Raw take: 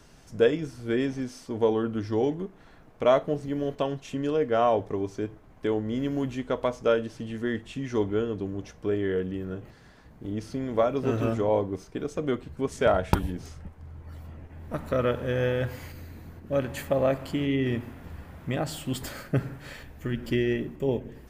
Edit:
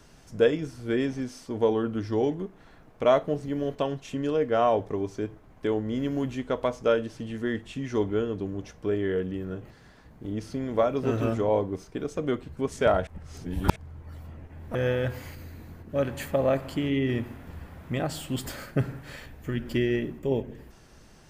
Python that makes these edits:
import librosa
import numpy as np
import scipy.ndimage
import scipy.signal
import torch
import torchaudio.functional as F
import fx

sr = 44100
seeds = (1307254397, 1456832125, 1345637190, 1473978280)

y = fx.edit(x, sr, fx.reverse_span(start_s=13.07, length_s=0.69),
    fx.cut(start_s=14.75, length_s=0.57), tone=tone)